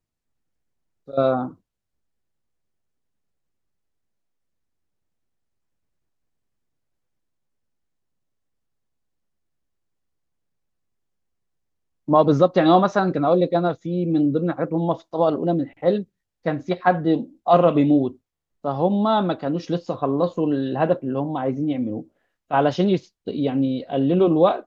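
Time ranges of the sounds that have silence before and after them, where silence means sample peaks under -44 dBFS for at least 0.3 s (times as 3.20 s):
1.08–1.54 s
12.08–16.04 s
16.45–18.16 s
18.64–22.04 s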